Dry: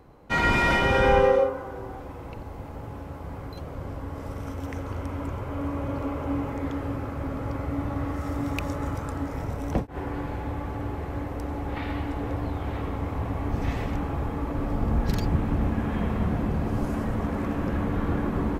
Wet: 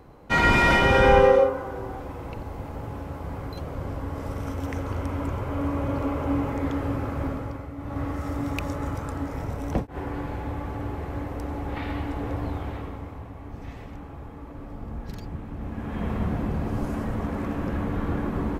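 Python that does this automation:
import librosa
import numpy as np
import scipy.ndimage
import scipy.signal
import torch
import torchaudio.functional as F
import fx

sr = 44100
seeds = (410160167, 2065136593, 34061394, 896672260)

y = fx.gain(x, sr, db=fx.line((7.26, 3.0), (7.75, -9.0), (7.99, 0.0), (12.55, 0.0), (13.31, -11.0), (15.53, -11.0), (16.1, -1.0)))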